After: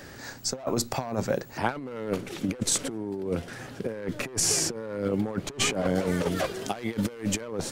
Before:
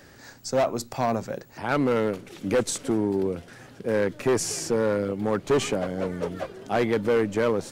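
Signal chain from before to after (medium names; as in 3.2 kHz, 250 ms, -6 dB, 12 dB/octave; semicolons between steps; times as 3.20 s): 5.95–7.41 s: treble shelf 2.7 kHz +11 dB; compressor with a negative ratio -29 dBFS, ratio -0.5; trim +1 dB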